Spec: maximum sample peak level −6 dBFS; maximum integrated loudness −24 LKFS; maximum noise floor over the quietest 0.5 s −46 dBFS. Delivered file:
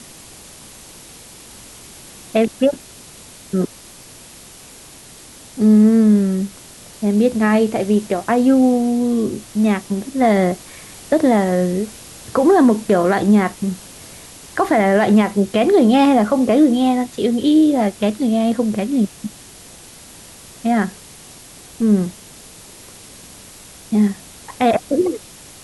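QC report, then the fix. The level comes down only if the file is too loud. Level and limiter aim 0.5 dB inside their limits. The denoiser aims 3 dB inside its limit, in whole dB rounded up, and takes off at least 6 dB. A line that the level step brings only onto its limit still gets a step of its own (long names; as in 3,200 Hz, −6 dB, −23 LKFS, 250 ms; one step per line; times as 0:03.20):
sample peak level −4.0 dBFS: out of spec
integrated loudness −16.5 LKFS: out of spec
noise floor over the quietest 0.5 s −41 dBFS: out of spec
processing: level −8 dB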